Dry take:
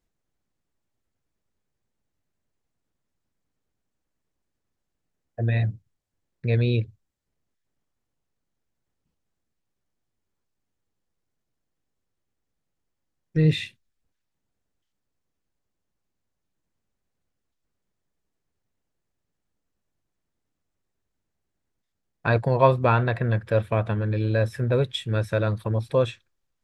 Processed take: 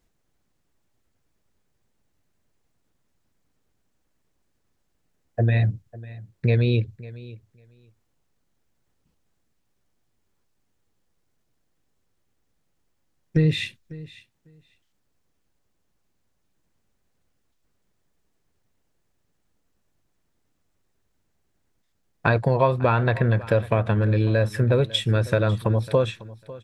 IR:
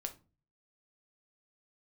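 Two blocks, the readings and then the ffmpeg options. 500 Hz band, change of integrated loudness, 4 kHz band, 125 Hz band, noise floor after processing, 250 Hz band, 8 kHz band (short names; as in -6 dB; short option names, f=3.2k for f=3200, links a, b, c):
+1.0 dB, +2.0 dB, +4.5 dB, +2.5 dB, -72 dBFS, +2.5 dB, n/a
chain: -filter_complex "[0:a]acompressor=threshold=-25dB:ratio=4,asplit=2[a][b];[b]aecho=0:1:549|1098:0.112|0.0168[c];[a][c]amix=inputs=2:normalize=0,volume=8dB"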